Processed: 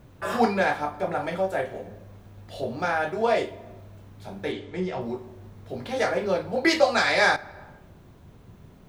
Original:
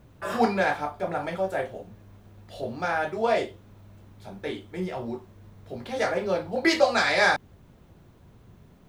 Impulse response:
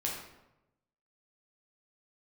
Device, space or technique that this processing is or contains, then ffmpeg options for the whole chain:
compressed reverb return: -filter_complex "[0:a]asplit=2[a][b];[1:a]atrim=start_sample=2205[c];[b][c]afir=irnorm=-1:irlink=0,acompressor=threshold=-28dB:ratio=6,volume=-8dB[d];[a][d]amix=inputs=2:normalize=0,asettb=1/sr,asplit=3[e][f][g];[e]atrim=end=4.524[h];[f]atrim=start=4.52:end=5.01,asetpts=PTS-STARTPTS,afade=t=in:d=0.004:c=qsin,afade=t=out:st=0.486:d=0.004:c=qsin,lowpass=f=7.3k:w=0.5412,lowpass=f=7.3k:w=1.3066[i];[g]atrim=start=5.006[j];[h][i]acrossfade=d=0.004:c1=hsin:c2=qsin[k];[k][j]acrossfade=d=0.004:c1=qsin:c2=hsin"

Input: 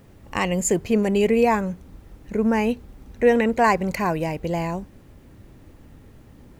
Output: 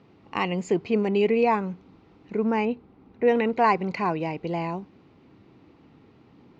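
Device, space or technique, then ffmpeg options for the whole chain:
kitchen radio: -filter_complex "[0:a]asettb=1/sr,asplit=3[a][b][c];[a]atrim=end=2.654[d];[b]atrim=start=2.65:end=3.28,asetpts=PTS-STARTPTS,afade=t=in:d=0.004:c=qsin,afade=t=out:st=0.626:d=0.004:c=qsin,lowpass=f=1.5k:p=1[e];[c]atrim=start=3.276[f];[d][e]acrossfade=d=0.004:c1=hsin:c2=qsin[g];[g][f]acrossfade=d=0.004:c1=qsin:c2=hsin,highpass=190,equalizer=f=230:t=q:w=4:g=-3,equalizer=f=570:t=q:w=4:g=-9,equalizer=f=1.7k:t=q:w=4:g=-9,equalizer=f=3.3k:t=q:w=4:g=-4,lowpass=f=4.2k:w=0.5412,lowpass=f=4.2k:w=1.3066"

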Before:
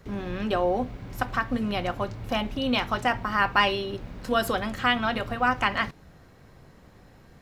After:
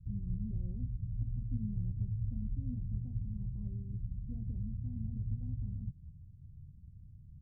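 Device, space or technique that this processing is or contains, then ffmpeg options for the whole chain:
the neighbour's flat through the wall: -af "lowpass=f=150:w=0.5412,lowpass=f=150:w=1.3066,equalizer=f=85:t=o:w=0.81:g=5.5"

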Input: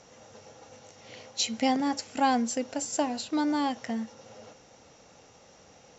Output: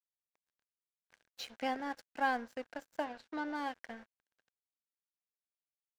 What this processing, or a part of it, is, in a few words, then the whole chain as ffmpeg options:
pocket radio on a weak battery: -filter_complex "[0:a]highpass=350,lowpass=3.1k,aeval=exprs='sgn(val(0))*max(abs(val(0))-0.0075,0)':c=same,equalizer=f=1.6k:t=o:w=0.24:g=10,asplit=3[a][b][c];[a]afade=t=out:st=3.04:d=0.02[d];[b]lowpass=5.8k,afade=t=in:st=3.04:d=0.02,afade=t=out:st=3.54:d=0.02[e];[c]afade=t=in:st=3.54:d=0.02[f];[d][e][f]amix=inputs=3:normalize=0,volume=-7dB"

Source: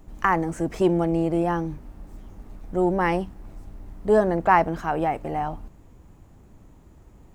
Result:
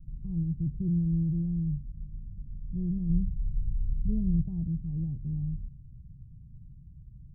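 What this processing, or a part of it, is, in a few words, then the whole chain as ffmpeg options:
the neighbour's flat through the wall: -filter_complex "[0:a]asettb=1/sr,asplit=3[a][b][c];[a]atrim=end=3.094[d];[b]atrim=start=3.09:end=4.43,asetpts=PTS-STARTPTS,afade=t=in:d=0.004:c=qsin,afade=t=out:st=1.336:d=0.004:c=qsin,lowshelf=f=110:g=11[e];[c]atrim=start=4.426[f];[d][e]acrossfade=d=0.004:c1=hsin:c2=qsin[g];[g][f]acrossfade=d=0.004:c1=qsin:c2=hsin,lowpass=f=160:w=0.5412,lowpass=f=160:w=1.3066,equalizer=f=140:t=o:w=0.52:g=8,volume=1.5dB"

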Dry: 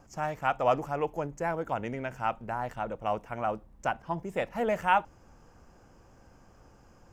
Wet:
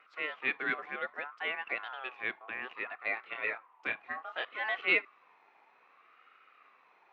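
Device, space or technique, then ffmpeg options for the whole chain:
voice changer toy: -filter_complex "[0:a]aeval=exprs='val(0)*sin(2*PI*1100*n/s+1100*0.2/0.63*sin(2*PI*0.63*n/s))':c=same,highpass=510,equalizer=f=600:t=q:w=4:g=-6,equalizer=f=930:t=q:w=4:g=-8,equalizer=f=1.6k:t=q:w=4:g=-5,equalizer=f=2.5k:t=q:w=4:g=6,lowpass=f=3.5k:w=0.5412,lowpass=f=3.5k:w=1.3066,asettb=1/sr,asplit=3[a][b][c];[a]atrim=end=3.144[d];[b]atrim=start=3.14:end=4.45,asetpts=PTS-STARTPTS,afade=t=in:d=0.004:c=qsin,afade=t=out:st=1.306:d=0.004:c=qsin,asplit=2[e][f];[f]adelay=27,volume=-6dB[g];[e][g]amix=inputs=2:normalize=0,atrim=end_sample=57771[h];[c]atrim=start=4.446[i];[d][h]acrossfade=d=0.004:c1=hsin:c2=qsin[j];[j][i]acrossfade=d=0.004:c1=qsin:c2=hsin"

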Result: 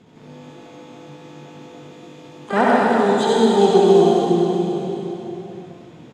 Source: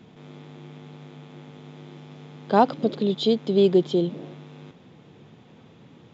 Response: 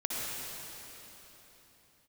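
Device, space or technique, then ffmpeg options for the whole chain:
shimmer-style reverb: -filter_complex "[0:a]lowpass=5.8k,asettb=1/sr,asplit=3[a][b][c];[a]atrim=end=1.754[d];[b]atrim=start=1.75:end=2.24,asetpts=PTS-STARTPTS,afade=t=in:d=0.004:c=qsin,afade=t=out:st=0.486:d=0.004:c=qsin,equalizer=f=810:w=3.6:g=-13[e];[c]atrim=start=2.236[f];[d][e]acrossfade=d=0.004:c1=hsin:c2=qsin[g];[g][f]acrossfade=d=0.004:c1=qsin:c2=hsin,asplit=2[h][i];[i]adelay=69,lowpass=f=900:p=1,volume=-24dB,asplit=2[j][k];[k]adelay=69,lowpass=f=900:p=1,volume=0.42,asplit=2[l][m];[m]adelay=69,lowpass=f=900:p=1,volume=0.42[n];[h][j][l][n]amix=inputs=4:normalize=0,asplit=2[o][p];[p]asetrate=88200,aresample=44100,atempo=0.5,volume=-7dB[q];[o][q]amix=inputs=2:normalize=0[r];[1:a]atrim=start_sample=2205[s];[r][s]afir=irnorm=-1:irlink=0,volume=-1dB"

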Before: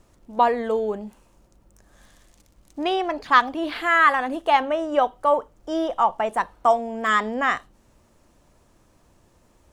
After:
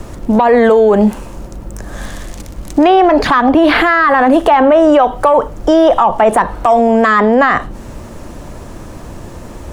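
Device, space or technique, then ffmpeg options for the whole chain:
mastering chain: -filter_complex "[0:a]equalizer=f=1.7k:t=o:w=0.77:g=2,acrossover=split=220|460|2300[a][b][c][d];[a]acompressor=threshold=-43dB:ratio=4[e];[b]acompressor=threshold=-37dB:ratio=4[f];[c]acompressor=threshold=-19dB:ratio=4[g];[d]acompressor=threshold=-44dB:ratio=4[h];[e][f][g][h]amix=inputs=4:normalize=0,acompressor=threshold=-25dB:ratio=3,asoftclip=type=tanh:threshold=-17dB,tiltshelf=f=970:g=3.5,alimiter=level_in=27.5dB:limit=-1dB:release=50:level=0:latency=1,volume=-1dB"

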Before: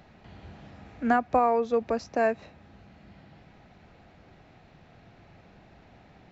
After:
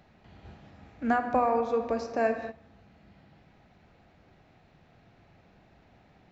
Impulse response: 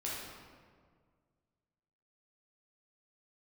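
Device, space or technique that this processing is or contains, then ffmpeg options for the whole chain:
keyed gated reverb: -filter_complex "[0:a]asplit=3[a][b][c];[1:a]atrim=start_sample=2205[d];[b][d]afir=irnorm=-1:irlink=0[e];[c]apad=whole_len=278659[f];[e][f]sidechaingate=range=-19dB:threshold=-45dB:ratio=16:detection=peak,volume=-4.5dB[g];[a][g]amix=inputs=2:normalize=0,volume=-5.5dB"

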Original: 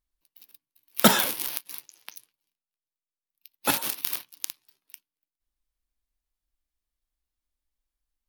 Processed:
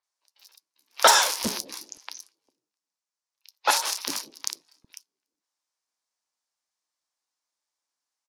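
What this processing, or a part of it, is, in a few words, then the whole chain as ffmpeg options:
intercom: -filter_complex "[0:a]highpass=470,lowpass=4.9k,equalizer=f=960:t=o:w=0.47:g=4,highshelf=f=4.1k:t=q:w=1.5:g=9,asoftclip=type=tanh:threshold=-8dB,acrossover=split=360|4100[a][b][c];[c]adelay=30[d];[a]adelay=400[e];[e][b][d]amix=inputs=3:normalize=0,volume=6dB"

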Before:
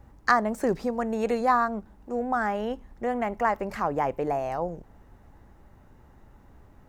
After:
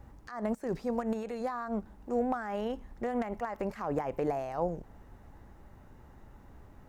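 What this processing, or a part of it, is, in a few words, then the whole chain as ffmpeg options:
de-esser from a sidechain: -filter_complex "[0:a]asplit=2[a][b];[b]highpass=5.2k,apad=whole_len=303493[c];[a][c]sidechaincompress=threshold=-57dB:ratio=12:attack=1.3:release=78"

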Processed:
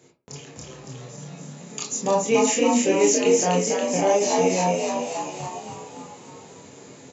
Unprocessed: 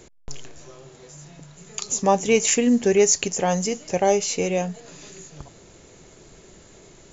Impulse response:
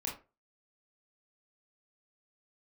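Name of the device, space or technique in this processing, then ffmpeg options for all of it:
far laptop microphone: -filter_complex "[0:a]asplit=9[a][b][c][d][e][f][g][h][i];[b]adelay=281,afreqshift=62,volume=-3dB[j];[c]adelay=562,afreqshift=124,volume=-8.2dB[k];[d]adelay=843,afreqshift=186,volume=-13.4dB[l];[e]adelay=1124,afreqshift=248,volume=-18.6dB[m];[f]adelay=1405,afreqshift=310,volume=-23.8dB[n];[g]adelay=1686,afreqshift=372,volume=-29dB[o];[h]adelay=1967,afreqshift=434,volume=-34.2dB[p];[i]adelay=2248,afreqshift=496,volume=-39.3dB[q];[a][j][k][l][m][n][o][p][q]amix=inputs=9:normalize=0[r];[1:a]atrim=start_sample=2205[s];[r][s]afir=irnorm=-1:irlink=0,highpass=f=110:w=0.5412,highpass=f=110:w=1.3066,dynaudnorm=f=180:g=3:m=6.5dB,volume=-6.5dB"

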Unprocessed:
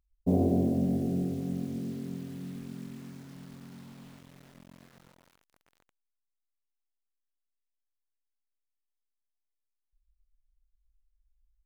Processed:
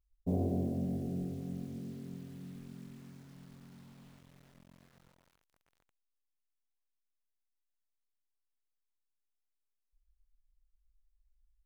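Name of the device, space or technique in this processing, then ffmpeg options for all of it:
low shelf boost with a cut just above: -af "lowshelf=f=94:g=7.5,equalizer=f=270:t=o:w=0.77:g=-2.5,volume=-7.5dB"

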